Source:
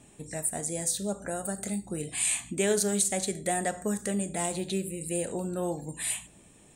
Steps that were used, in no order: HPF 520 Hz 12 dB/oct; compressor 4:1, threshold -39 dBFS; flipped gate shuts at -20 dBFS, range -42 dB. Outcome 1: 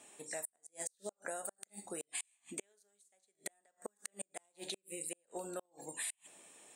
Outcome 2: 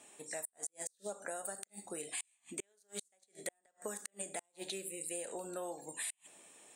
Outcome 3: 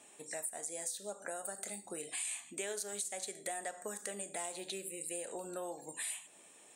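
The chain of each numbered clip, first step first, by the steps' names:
flipped gate > HPF > compressor; HPF > flipped gate > compressor; HPF > compressor > flipped gate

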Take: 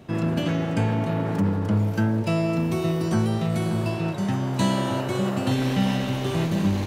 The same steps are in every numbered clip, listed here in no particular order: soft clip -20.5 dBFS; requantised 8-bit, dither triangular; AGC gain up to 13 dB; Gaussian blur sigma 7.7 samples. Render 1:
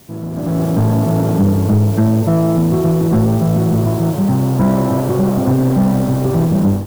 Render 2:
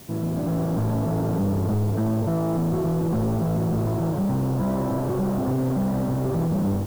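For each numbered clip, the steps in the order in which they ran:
Gaussian blur > requantised > soft clip > AGC; AGC > soft clip > Gaussian blur > requantised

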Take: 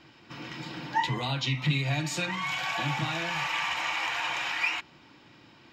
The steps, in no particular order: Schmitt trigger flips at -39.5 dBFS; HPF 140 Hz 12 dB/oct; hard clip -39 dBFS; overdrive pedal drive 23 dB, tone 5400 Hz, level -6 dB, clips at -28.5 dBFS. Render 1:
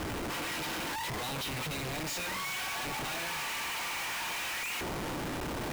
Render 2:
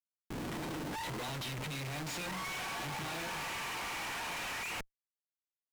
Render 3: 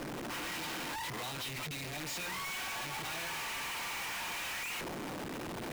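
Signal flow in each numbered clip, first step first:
hard clip > HPF > overdrive pedal > Schmitt trigger; HPF > Schmitt trigger > overdrive pedal > hard clip; overdrive pedal > Schmitt trigger > HPF > hard clip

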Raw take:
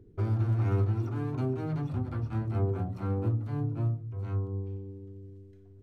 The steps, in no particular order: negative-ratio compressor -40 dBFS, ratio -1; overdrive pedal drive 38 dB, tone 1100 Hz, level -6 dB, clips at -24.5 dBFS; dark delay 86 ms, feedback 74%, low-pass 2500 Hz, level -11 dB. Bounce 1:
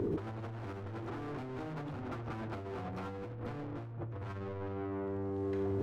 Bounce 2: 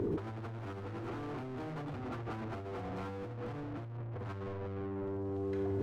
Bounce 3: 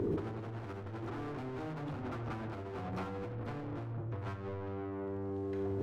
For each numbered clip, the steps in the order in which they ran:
overdrive pedal > dark delay > negative-ratio compressor; dark delay > overdrive pedal > negative-ratio compressor; overdrive pedal > negative-ratio compressor > dark delay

